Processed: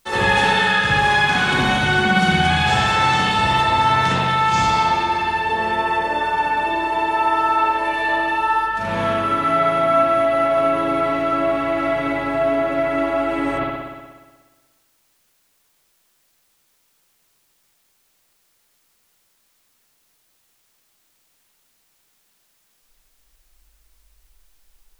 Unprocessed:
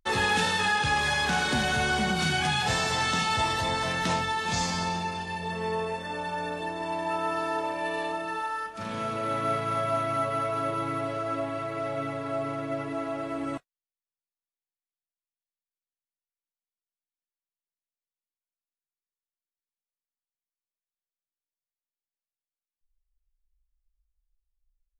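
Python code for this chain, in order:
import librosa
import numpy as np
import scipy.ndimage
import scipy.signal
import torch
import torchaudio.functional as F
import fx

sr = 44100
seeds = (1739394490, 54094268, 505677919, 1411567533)

p1 = fx.rev_spring(x, sr, rt60_s=1.4, pass_ms=(60,), chirp_ms=55, drr_db=-9.0)
p2 = fx.rider(p1, sr, range_db=10, speed_s=0.5)
p3 = p1 + (p2 * 10.0 ** (-2.5 / 20.0))
p4 = fx.quant_dither(p3, sr, seeds[0], bits=10, dither='triangular')
y = p4 * 10.0 ** (-3.5 / 20.0)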